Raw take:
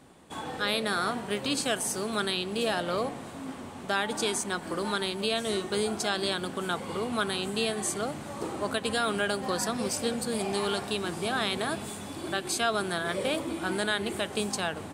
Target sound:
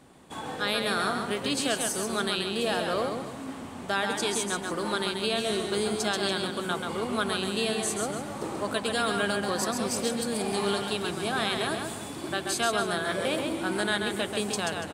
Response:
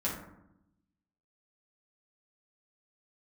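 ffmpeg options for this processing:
-af "aecho=1:1:134|287:0.562|0.2"

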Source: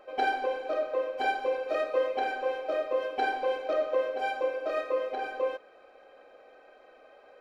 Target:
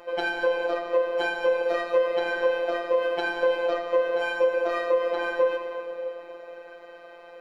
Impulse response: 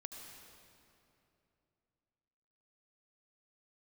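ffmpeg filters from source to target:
-filter_complex "[0:a]asplit=2[a][b];[1:a]atrim=start_sample=2205[c];[b][c]afir=irnorm=-1:irlink=0,volume=6.5dB[d];[a][d]amix=inputs=2:normalize=0,acrossover=split=180[e][f];[f]acompressor=threshold=-23dB:ratio=6[g];[e][g]amix=inputs=2:normalize=0,afftfilt=real='hypot(re,im)*cos(PI*b)':imag='0':win_size=1024:overlap=0.75,volume=5.5dB"

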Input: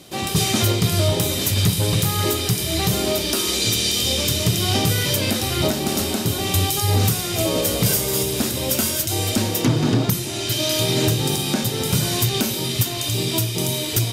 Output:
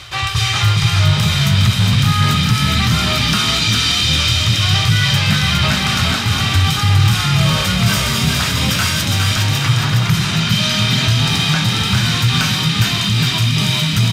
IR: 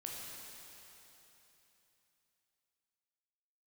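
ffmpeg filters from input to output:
-filter_complex "[0:a]firequalizer=gain_entry='entry(120,0);entry(180,-27);entry(1200,2);entry(11000,-20)':delay=0.05:min_phase=1,areverse,acompressor=mode=upward:threshold=-18dB:ratio=2.5,areverse,asplit=8[a][b][c][d][e][f][g][h];[b]adelay=410,afreqshift=43,volume=-4dB[i];[c]adelay=820,afreqshift=86,volume=-9.8dB[j];[d]adelay=1230,afreqshift=129,volume=-15.7dB[k];[e]adelay=1640,afreqshift=172,volume=-21.5dB[l];[f]adelay=2050,afreqshift=215,volume=-27.4dB[m];[g]adelay=2460,afreqshift=258,volume=-33.2dB[n];[h]adelay=2870,afreqshift=301,volume=-39.1dB[o];[a][i][j][k][l][m][n][o]amix=inputs=8:normalize=0,acontrast=90"

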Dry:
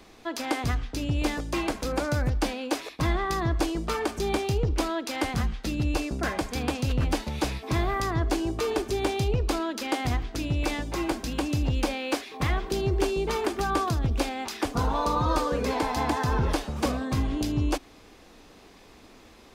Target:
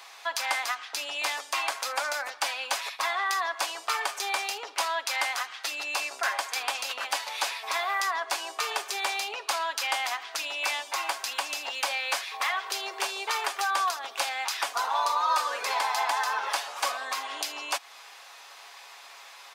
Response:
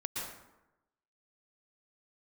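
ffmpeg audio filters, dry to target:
-filter_complex "[0:a]highpass=f=800:w=0.5412,highpass=f=800:w=1.3066,aecho=1:1:7.2:0.41,asplit=2[a][b];[b]acompressor=threshold=-39dB:ratio=6,volume=2dB[c];[a][c]amix=inputs=2:normalize=0,volume=1dB"

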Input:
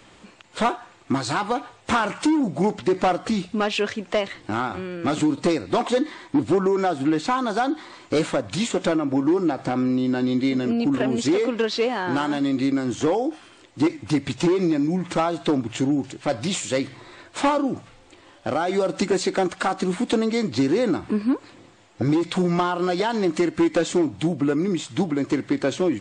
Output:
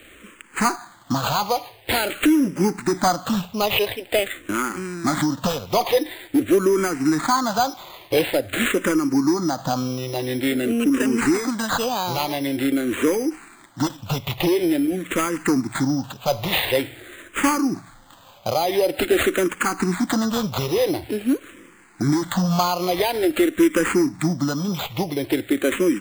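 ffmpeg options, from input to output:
-filter_complex "[0:a]highshelf=f=3.7k:g=10.5,acrusher=samples=8:mix=1:aa=0.000001,asplit=2[a][b];[b]afreqshift=-0.47[c];[a][c]amix=inputs=2:normalize=1,volume=3.5dB"

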